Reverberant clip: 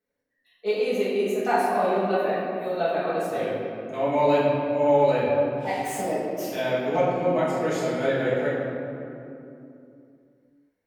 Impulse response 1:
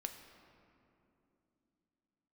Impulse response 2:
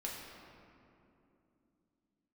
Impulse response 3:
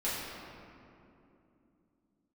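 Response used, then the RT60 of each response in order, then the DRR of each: 3; 2.8, 2.8, 2.8 seconds; 5.5, −3.5, −10.5 decibels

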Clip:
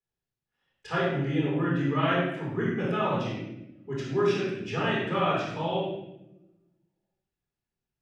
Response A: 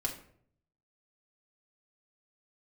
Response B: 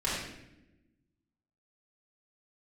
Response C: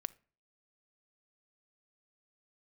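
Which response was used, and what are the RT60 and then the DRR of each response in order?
B; 0.60 s, non-exponential decay, 0.40 s; −1.0, −8.0, 18.0 decibels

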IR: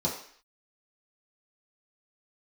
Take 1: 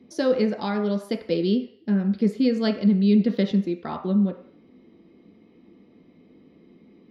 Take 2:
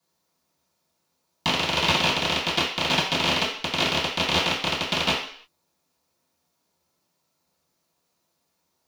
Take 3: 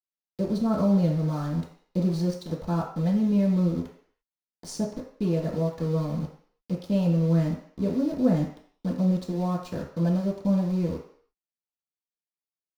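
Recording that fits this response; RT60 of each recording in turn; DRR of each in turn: 3; 0.55, 0.55, 0.55 seconds; 3.0, −13.5, −5.5 decibels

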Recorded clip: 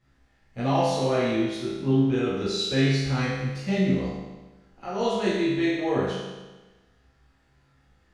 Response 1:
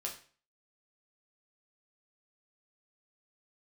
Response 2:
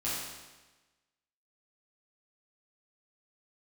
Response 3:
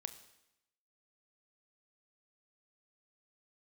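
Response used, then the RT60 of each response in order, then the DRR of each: 2; 0.40, 1.2, 0.85 seconds; −1.5, −10.0, 10.0 decibels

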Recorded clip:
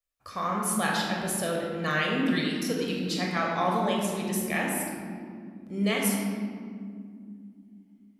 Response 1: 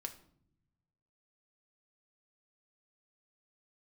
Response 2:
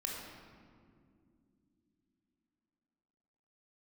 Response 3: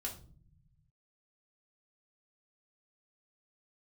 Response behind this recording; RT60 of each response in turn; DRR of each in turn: 2; non-exponential decay, non-exponential decay, 0.45 s; 5.0, −2.0, −2.5 decibels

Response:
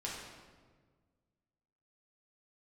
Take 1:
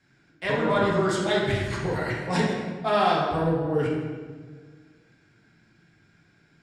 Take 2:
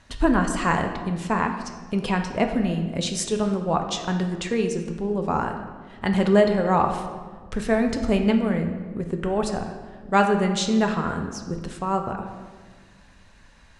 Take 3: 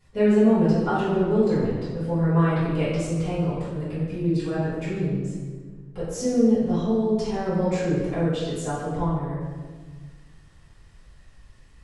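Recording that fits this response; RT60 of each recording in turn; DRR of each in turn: 1; 1.5, 1.5, 1.5 seconds; −5.5, 4.0, −14.0 decibels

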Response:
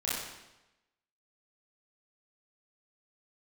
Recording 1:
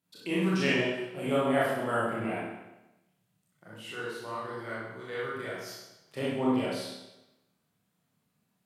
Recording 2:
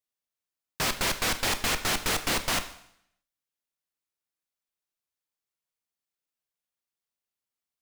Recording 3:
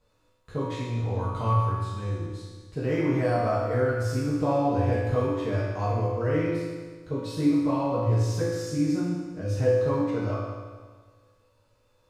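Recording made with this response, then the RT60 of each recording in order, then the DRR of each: 1; 1.0, 0.70, 1.5 seconds; −8.5, 9.0, −9.0 decibels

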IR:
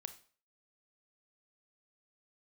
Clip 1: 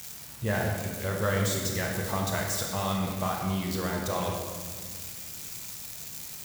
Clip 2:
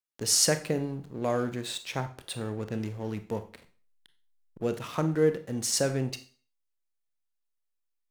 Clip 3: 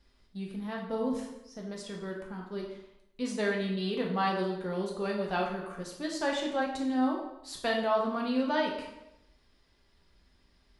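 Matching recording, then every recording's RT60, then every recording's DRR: 2; 1.8, 0.45, 0.90 seconds; −0.5, 9.5, −1.5 decibels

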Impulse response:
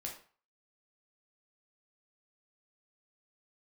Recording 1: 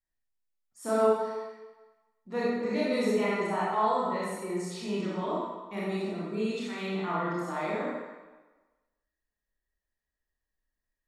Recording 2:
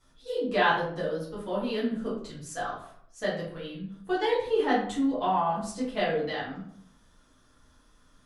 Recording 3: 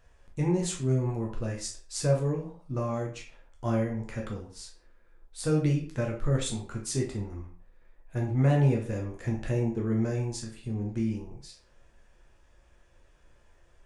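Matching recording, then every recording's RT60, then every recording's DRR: 3; 1.2, 0.65, 0.40 seconds; −7.5, −9.5, −1.0 decibels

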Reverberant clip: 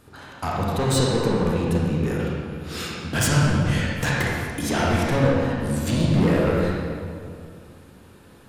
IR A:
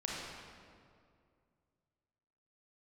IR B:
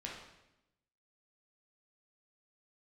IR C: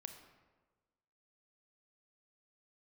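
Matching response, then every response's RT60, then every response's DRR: A; 2.3, 0.90, 1.3 seconds; −4.5, −3.0, 6.0 decibels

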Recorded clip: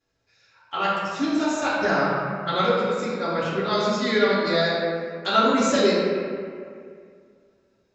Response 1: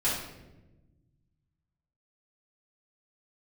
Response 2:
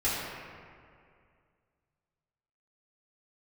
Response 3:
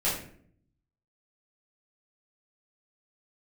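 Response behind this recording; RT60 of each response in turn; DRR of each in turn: 2; 1.1, 2.3, 0.60 seconds; −10.5, −11.0, −9.5 decibels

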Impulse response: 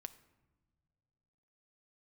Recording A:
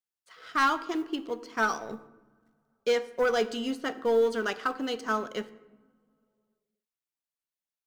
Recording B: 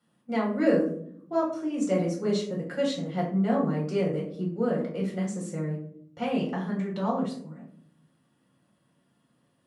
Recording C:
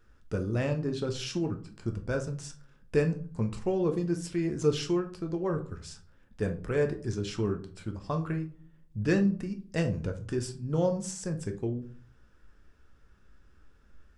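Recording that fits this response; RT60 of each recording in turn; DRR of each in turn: A; non-exponential decay, 0.65 s, 0.45 s; 11.5, −4.5, 5.0 decibels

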